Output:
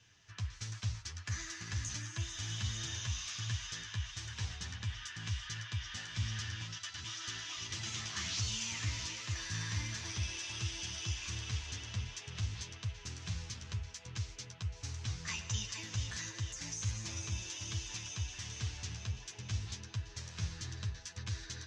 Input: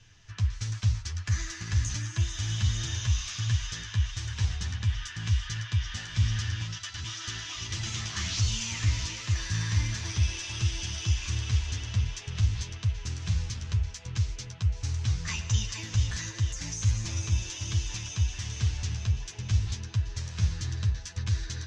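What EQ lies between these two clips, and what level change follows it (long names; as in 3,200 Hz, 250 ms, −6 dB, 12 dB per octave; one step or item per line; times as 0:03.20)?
high-pass filter 190 Hz 6 dB per octave
−5.0 dB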